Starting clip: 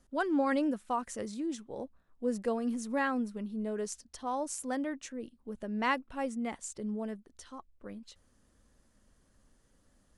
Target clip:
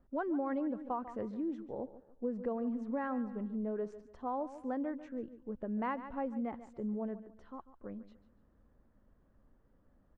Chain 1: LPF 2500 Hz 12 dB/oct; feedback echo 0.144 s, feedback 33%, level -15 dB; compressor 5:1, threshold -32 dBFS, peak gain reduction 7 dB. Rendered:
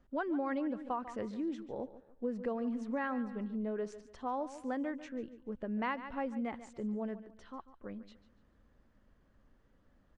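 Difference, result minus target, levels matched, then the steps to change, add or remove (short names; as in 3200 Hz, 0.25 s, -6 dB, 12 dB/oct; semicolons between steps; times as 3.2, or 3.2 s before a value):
2000 Hz band +5.0 dB
change: LPF 1200 Hz 12 dB/oct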